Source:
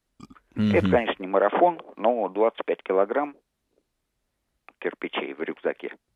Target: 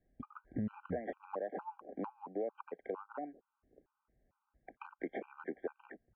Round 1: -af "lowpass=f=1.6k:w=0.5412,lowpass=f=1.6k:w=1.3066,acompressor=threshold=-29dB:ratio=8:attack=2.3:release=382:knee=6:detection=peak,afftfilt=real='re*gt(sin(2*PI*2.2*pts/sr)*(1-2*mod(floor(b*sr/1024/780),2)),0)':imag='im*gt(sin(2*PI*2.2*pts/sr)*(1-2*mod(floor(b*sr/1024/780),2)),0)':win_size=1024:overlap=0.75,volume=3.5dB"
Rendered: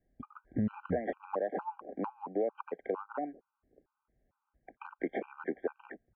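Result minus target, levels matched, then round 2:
compressor: peak gain reduction -6 dB
-af "lowpass=f=1.6k:w=0.5412,lowpass=f=1.6k:w=1.3066,acompressor=threshold=-36dB:ratio=8:attack=2.3:release=382:knee=6:detection=peak,afftfilt=real='re*gt(sin(2*PI*2.2*pts/sr)*(1-2*mod(floor(b*sr/1024/780),2)),0)':imag='im*gt(sin(2*PI*2.2*pts/sr)*(1-2*mod(floor(b*sr/1024/780),2)),0)':win_size=1024:overlap=0.75,volume=3.5dB"

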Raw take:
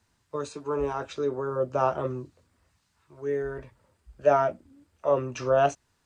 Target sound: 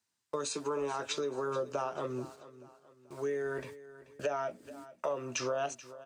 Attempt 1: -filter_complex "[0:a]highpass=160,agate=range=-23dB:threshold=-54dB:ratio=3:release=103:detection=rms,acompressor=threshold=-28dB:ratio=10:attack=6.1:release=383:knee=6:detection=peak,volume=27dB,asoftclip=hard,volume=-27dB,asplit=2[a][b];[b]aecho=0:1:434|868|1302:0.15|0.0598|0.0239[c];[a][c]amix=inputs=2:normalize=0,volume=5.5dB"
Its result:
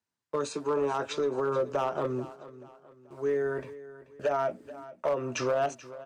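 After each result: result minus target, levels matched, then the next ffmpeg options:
compressor: peak gain reduction -7.5 dB; 4000 Hz band -6.0 dB
-filter_complex "[0:a]highpass=160,agate=range=-23dB:threshold=-54dB:ratio=3:release=103:detection=rms,acompressor=threshold=-35.5dB:ratio=10:attack=6.1:release=383:knee=6:detection=peak,volume=27dB,asoftclip=hard,volume=-27dB,asplit=2[a][b];[b]aecho=0:1:434|868|1302:0.15|0.0598|0.0239[c];[a][c]amix=inputs=2:normalize=0,volume=5.5dB"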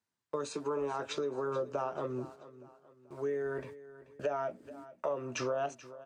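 4000 Hz band -4.5 dB
-filter_complex "[0:a]highpass=160,highshelf=f=2.5k:g=11.5,agate=range=-23dB:threshold=-54dB:ratio=3:release=103:detection=rms,acompressor=threshold=-35.5dB:ratio=10:attack=6.1:release=383:knee=6:detection=peak,volume=27dB,asoftclip=hard,volume=-27dB,asplit=2[a][b];[b]aecho=0:1:434|868|1302:0.15|0.0598|0.0239[c];[a][c]amix=inputs=2:normalize=0,volume=5.5dB"

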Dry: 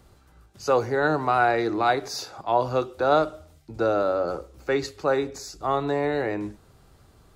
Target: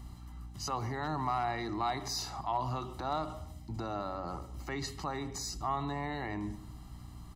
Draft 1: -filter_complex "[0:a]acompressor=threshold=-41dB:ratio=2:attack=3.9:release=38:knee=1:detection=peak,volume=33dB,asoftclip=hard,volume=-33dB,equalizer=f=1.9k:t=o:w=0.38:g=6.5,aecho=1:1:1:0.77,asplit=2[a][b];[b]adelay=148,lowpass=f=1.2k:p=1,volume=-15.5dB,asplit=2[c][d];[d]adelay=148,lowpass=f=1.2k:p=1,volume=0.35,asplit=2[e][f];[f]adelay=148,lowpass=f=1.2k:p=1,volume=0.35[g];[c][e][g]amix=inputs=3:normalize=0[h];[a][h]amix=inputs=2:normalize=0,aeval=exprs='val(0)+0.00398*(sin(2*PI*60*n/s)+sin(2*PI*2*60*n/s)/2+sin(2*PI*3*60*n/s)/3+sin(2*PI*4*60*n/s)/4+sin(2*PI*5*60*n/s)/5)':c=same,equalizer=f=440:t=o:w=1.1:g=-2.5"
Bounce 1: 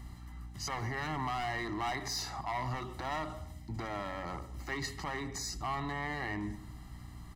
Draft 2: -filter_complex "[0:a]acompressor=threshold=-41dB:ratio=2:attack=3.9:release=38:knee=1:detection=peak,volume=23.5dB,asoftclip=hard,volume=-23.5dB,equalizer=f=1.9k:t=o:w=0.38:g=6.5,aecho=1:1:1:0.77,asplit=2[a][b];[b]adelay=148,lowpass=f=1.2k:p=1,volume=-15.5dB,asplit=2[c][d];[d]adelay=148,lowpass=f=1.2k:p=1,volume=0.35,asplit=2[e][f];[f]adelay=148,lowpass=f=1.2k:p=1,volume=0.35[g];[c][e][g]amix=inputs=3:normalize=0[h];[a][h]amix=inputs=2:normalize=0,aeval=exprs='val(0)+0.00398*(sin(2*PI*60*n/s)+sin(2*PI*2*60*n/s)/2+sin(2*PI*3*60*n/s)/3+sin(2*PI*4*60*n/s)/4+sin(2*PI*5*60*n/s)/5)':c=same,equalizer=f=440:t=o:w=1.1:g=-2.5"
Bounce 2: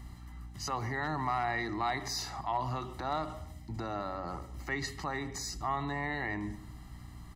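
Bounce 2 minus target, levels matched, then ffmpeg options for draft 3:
2000 Hz band +6.0 dB
-filter_complex "[0:a]acompressor=threshold=-41dB:ratio=2:attack=3.9:release=38:knee=1:detection=peak,volume=23.5dB,asoftclip=hard,volume=-23.5dB,equalizer=f=1.9k:t=o:w=0.38:g=-2.5,aecho=1:1:1:0.77,asplit=2[a][b];[b]adelay=148,lowpass=f=1.2k:p=1,volume=-15.5dB,asplit=2[c][d];[d]adelay=148,lowpass=f=1.2k:p=1,volume=0.35,asplit=2[e][f];[f]adelay=148,lowpass=f=1.2k:p=1,volume=0.35[g];[c][e][g]amix=inputs=3:normalize=0[h];[a][h]amix=inputs=2:normalize=0,aeval=exprs='val(0)+0.00398*(sin(2*PI*60*n/s)+sin(2*PI*2*60*n/s)/2+sin(2*PI*3*60*n/s)/3+sin(2*PI*4*60*n/s)/4+sin(2*PI*5*60*n/s)/5)':c=same,equalizer=f=440:t=o:w=1.1:g=-2.5"

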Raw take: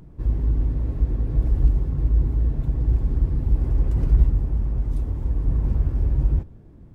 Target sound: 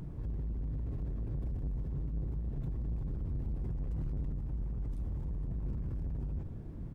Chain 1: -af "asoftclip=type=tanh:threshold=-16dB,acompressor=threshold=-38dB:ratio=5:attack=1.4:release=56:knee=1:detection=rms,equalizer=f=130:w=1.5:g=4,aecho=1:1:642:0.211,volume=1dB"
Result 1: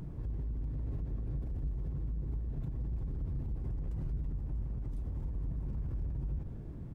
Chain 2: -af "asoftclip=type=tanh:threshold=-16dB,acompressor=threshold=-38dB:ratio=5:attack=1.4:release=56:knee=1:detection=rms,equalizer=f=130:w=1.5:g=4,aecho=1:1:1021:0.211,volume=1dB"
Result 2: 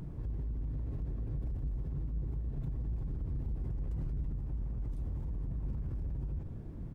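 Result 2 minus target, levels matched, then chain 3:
soft clip: distortion -5 dB
-af "asoftclip=type=tanh:threshold=-22.5dB,acompressor=threshold=-38dB:ratio=5:attack=1.4:release=56:knee=1:detection=rms,equalizer=f=130:w=1.5:g=4,aecho=1:1:1021:0.211,volume=1dB"

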